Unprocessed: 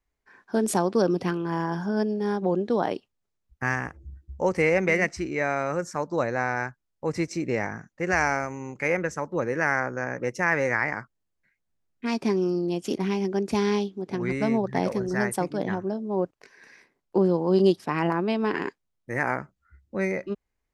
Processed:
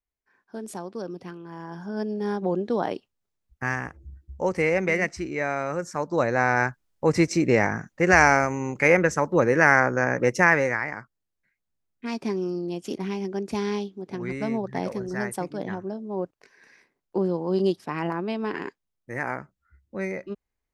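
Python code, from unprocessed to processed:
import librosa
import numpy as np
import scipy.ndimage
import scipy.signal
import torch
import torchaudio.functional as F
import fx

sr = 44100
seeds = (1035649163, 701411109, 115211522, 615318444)

y = fx.gain(x, sr, db=fx.line((1.55, -12.0), (2.19, -1.0), (5.82, -1.0), (6.66, 7.0), (10.42, 7.0), (10.83, -3.5)))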